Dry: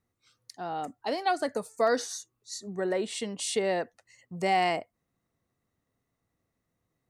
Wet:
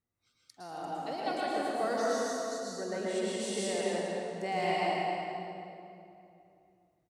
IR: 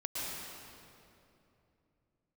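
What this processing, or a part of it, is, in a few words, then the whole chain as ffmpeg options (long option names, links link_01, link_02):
cave: -filter_complex "[0:a]aecho=1:1:273:0.282[link_01];[1:a]atrim=start_sample=2205[link_02];[link_01][link_02]afir=irnorm=-1:irlink=0,volume=-6.5dB"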